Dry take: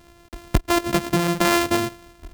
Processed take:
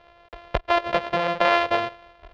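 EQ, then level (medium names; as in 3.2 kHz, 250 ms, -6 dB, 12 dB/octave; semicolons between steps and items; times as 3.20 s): low-pass 3.7 kHz 24 dB/octave; peaking EQ 130 Hz -2.5 dB 1.7 oct; resonant low shelf 390 Hz -8.5 dB, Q 3; 0.0 dB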